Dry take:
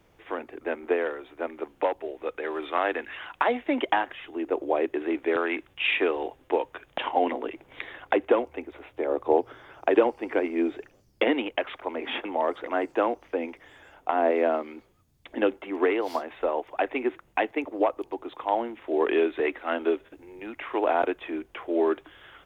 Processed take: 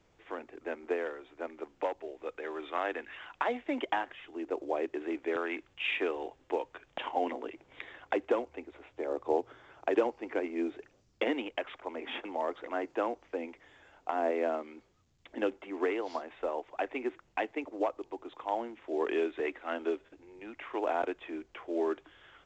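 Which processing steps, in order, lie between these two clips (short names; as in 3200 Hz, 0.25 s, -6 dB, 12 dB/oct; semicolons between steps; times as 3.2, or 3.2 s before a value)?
gain -7.5 dB; µ-law 128 kbps 16000 Hz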